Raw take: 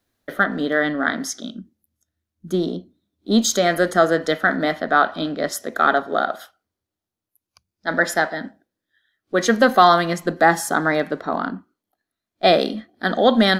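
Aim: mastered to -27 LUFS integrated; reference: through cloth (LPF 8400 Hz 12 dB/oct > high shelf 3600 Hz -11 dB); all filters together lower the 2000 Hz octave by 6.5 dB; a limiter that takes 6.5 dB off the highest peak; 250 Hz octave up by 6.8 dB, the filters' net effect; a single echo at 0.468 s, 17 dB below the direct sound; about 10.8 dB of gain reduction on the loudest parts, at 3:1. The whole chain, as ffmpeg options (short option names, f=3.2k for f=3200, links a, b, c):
-af "equalizer=f=250:t=o:g=8.5,equalizer=f=2k:t=o:g=-6.5,acompressor=threshold=-19dB:ratio=3,alimiter=limit=-15dB:level=0:latency=1,lowpass=8.4k,highshelf=f=3.6k:g=-11,aecho=1:1:468:0.141,volume=-1dB"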